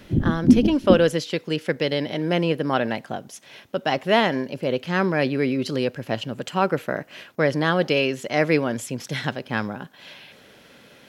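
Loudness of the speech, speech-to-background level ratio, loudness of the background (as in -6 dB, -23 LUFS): -23.5 LUFS, -3.0 dB, -20.5 LUFS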